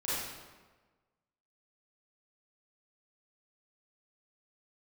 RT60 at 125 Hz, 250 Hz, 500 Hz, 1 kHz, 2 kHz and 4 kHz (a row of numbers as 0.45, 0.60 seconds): 1.4, 1.4, 1.4, 1.3, 1.1, 0.95 seconds